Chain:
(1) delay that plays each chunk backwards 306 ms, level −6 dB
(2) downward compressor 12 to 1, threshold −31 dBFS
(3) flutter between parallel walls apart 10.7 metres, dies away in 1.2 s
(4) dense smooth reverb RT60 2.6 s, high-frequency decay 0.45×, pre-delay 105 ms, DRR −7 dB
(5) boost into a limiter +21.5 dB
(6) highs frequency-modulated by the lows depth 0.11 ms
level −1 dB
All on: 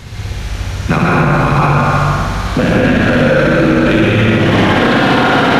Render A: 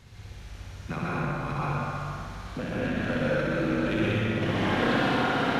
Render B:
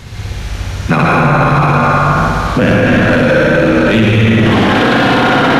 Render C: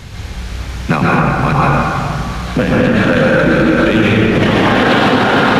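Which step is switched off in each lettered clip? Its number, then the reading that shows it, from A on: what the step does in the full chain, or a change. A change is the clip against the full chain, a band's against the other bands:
5, change in crest factor +5.0 dB
2, average gain reduction 6.5 dB
3, change in momentary loudness spread +3 LU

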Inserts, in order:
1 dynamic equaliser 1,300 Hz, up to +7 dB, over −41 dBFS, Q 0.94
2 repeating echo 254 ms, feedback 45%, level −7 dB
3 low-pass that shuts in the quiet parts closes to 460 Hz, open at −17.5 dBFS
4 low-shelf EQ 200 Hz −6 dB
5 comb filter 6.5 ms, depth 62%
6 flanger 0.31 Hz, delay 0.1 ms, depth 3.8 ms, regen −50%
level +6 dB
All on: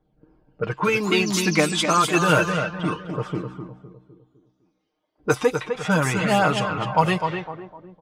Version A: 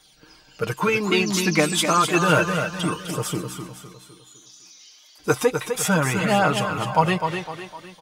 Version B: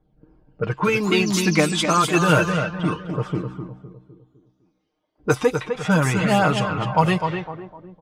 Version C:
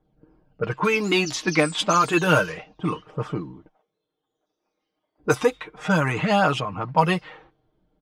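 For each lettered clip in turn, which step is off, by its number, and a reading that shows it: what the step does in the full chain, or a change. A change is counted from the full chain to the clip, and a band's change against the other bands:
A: 3, 8 kHz band +3.0 dB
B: 4, 125 Hz band +3.5 dB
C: 2, change in momentary loudness spread −1 LU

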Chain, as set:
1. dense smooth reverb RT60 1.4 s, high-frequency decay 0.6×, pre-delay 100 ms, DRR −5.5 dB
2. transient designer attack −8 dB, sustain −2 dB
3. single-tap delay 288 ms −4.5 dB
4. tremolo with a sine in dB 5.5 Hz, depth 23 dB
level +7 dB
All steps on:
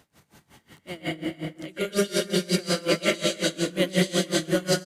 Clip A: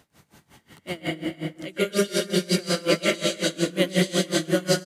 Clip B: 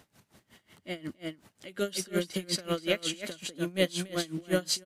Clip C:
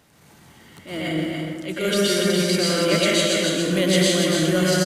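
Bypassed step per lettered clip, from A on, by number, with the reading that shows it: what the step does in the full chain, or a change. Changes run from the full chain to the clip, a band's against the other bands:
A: 2, change in integrated loudness +1.0 LU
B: 1, change in momentary loudness spread +3 LU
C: 4, change in crest factor −3.0 dB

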